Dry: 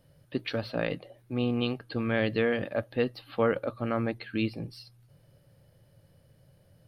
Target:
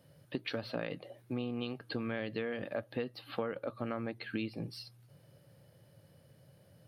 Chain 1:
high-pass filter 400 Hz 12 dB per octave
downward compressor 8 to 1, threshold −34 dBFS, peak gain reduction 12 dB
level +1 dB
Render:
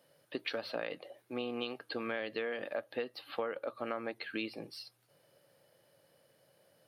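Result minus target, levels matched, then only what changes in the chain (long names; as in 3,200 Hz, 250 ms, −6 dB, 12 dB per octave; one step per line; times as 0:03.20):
125 Hz band −13.5 dB
change: high-pass filter 110 Hz 12 dB per octave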